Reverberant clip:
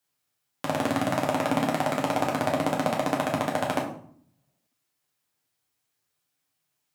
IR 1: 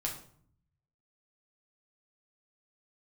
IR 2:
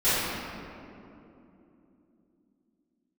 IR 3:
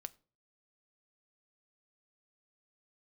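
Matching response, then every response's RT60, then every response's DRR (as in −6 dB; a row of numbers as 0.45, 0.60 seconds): 1; 0.60, 3.0, 0.40 seconds; −2.0, −17.0, 13.0 decibels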